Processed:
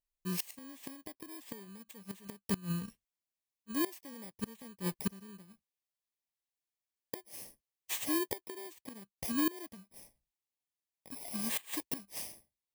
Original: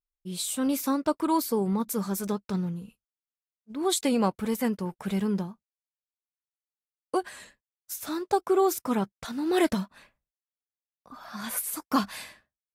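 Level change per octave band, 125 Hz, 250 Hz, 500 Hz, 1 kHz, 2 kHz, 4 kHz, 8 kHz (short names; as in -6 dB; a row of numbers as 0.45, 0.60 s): -8.5, -11.5, -17.0, -17.5, -7.0, -8.0, -8.0 dB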